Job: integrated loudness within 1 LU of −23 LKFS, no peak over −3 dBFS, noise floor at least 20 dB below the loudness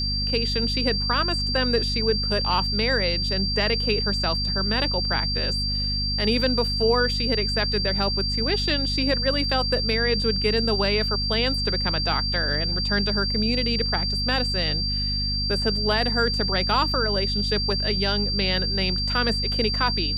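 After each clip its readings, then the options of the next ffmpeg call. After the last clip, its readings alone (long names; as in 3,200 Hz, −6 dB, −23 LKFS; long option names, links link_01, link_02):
mains hum 50 Hz; hum harmonics up to 250 Hz; level of the hum −26 dBFS; interfering tone 4,700 Hz; level of the tone −25 dBFS; integrated loudness −22.0 LKFS; sample peak −8.0 dBFS; target loudness −23.0 LKFS
→ -af "bandreject=frequency=50:width_type=h:width=4,bandreject=frequency=100:width_type=h:width=4,bandreject=frequency=150:width_type=h:width=4,bandreject=frequency=200:width_type=h:width=4,bandreject=frequency=250:width_type=h:width=4"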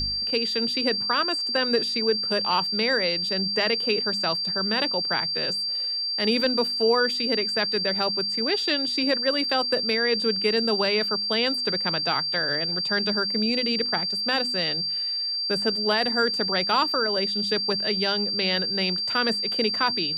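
mains hum none found; interfering tone 4,700 Hz; level of the tone −25 dBFS
→ -af "bandreject=frequency=4700:width=30"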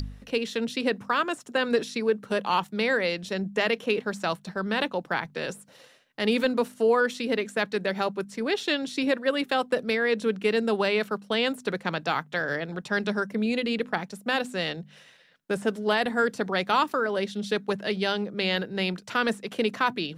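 interfering tone none found; integrated loudness −27.0 LKFS; sample peak −11.0 dBFS; target loudness −23.0 LKFS
→ -af "volume=4dB"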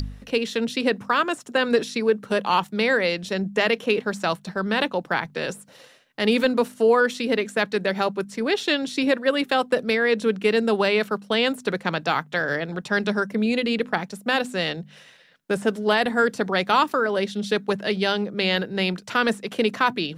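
integrated loudness −23.0 LKFS; sample peak −7.0 dBFS; background noise floor −51 dBFS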